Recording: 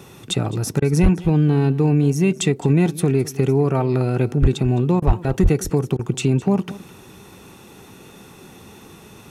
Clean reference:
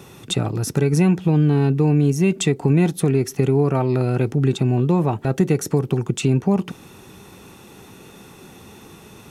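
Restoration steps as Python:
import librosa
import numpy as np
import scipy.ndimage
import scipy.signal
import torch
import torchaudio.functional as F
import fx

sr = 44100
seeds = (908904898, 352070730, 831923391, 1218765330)

y = fx.fix_declip(x, sr, threshold_db=-7.5)
y = fx.fix_deplosive(y, sr, at_s=(1.02, 4.41, 5.06, 5.42))
y = fx.fix_interpolate(y, sr, at_s=(0.8, 5.0, 5.97), length_ms=20.0)
y = fx.fix_echo_inverse(y, sr, delay_ms=211, level_db=-18.5)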